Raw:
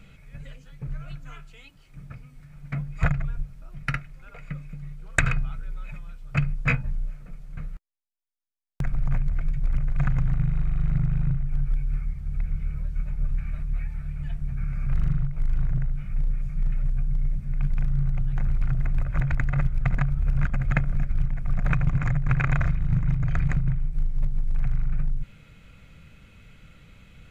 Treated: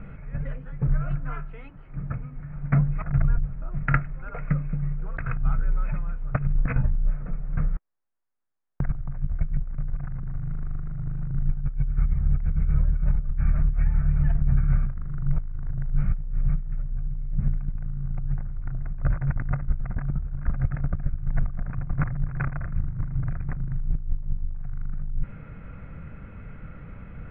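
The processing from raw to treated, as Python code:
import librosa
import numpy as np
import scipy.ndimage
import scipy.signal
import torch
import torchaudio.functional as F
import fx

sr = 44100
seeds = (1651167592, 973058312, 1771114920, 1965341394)

y = scipy.signal.sosfilt(scipy.signal.butter(4, 1700.0, 'lowpass', fs=sr, output='sos'), x)
y = fx.over_compress(y, sr, threshold_db=-27.0, ratio=-0.5)
y = F.gain(torch.from_numpy(y), 5.0).numpy()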